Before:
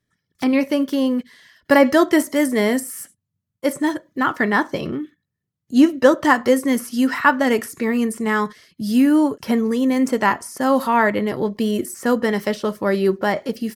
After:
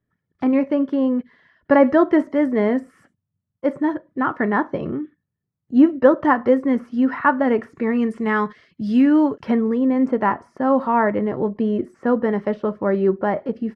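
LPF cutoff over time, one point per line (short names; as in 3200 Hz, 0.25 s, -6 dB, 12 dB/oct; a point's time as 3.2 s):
7.69 s 1400 Hz
8.12 s 2500 Hz
9.38 s 2500 Hz
9.81 s 1300 Hz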